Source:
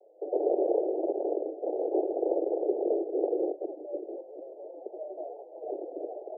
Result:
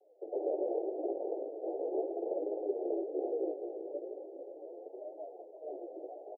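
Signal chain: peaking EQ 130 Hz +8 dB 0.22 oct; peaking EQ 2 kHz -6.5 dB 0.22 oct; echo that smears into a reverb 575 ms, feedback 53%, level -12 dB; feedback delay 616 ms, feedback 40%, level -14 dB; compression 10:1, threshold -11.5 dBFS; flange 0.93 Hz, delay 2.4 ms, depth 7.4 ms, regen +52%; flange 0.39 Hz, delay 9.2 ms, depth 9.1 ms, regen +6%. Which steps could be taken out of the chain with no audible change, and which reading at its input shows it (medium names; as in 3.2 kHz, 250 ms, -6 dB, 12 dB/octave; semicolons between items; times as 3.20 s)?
peaking EQ 130 Hz: input has nothing below 250 Hz; peaking EQ 2 kHz: input has nothing above 910 Hz; compression, threshold -11.5 dBFS: peak at its input -13.5 dBFS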